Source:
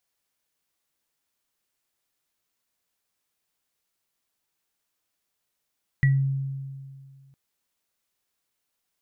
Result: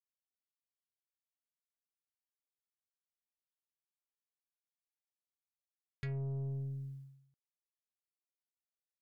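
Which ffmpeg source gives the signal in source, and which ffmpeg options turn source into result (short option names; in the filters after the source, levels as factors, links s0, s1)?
-f lavfi -i "aevalsrc='0.178*pow(10,-3*t/2.07)*sin(2*PI*136*t)+0.0891*pow(10,-3*t/0.22)*sin(2*PI*1940*t)':d=1.31:s=44100"
-af "agate=range=0.0224:threshold=0.00708:ratio=3:detection=peak,acompressor=threshold=0.0355:ratio=5,aeval=exprs='(tanh(63.1*val(0)+0.2)-tanh(0.2))/63.1':c=same"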